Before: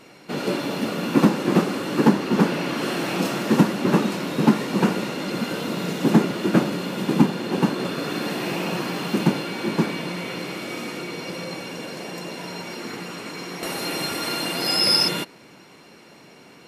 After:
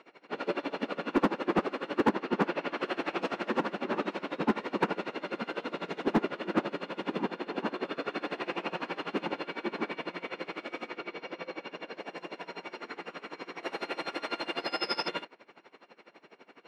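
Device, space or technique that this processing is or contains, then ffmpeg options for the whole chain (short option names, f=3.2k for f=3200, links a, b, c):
helicopter radio: -filter_complex "[0:a]asettb=1/sr,asplit=3[a][b][c];[a]atrim=end=10.884[d];[b]atrim=start=10.88:end=12,asetpts=PTS-STARTPTS,afade=t=in:d=0.004:c=qsin,afade=t=out:st=1.116:d=0.004:c=qsin,lowpass=6.2k[e];[c]atrim=start=11.996[f];[d][e]acrossfade=d=0.004:c1=hsin:c2=qsin[g];[g][f]acrossfade=d=0.004:c1=qsin:c2=hsin,highpass=370,lowpass=2.6k,aeval=exprs='val(0)*pow(10,-21*(0.5-0.5*cos(2*PI*12*n/s))/20)':c=same,asoftclip=type=hard:threshold=-17.5dB"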